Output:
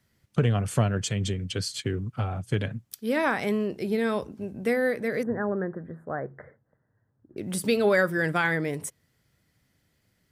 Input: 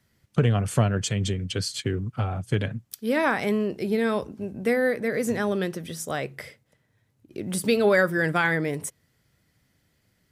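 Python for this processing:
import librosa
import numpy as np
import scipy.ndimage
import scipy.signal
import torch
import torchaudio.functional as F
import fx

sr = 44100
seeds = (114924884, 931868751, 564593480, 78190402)

y = fx.ellip_lowpass(x, sr, hz=1700.0, order=4, stop_db=40, at=(5.23, 7.37))
y = y * 10.0 ** (-2.0 / 20.0)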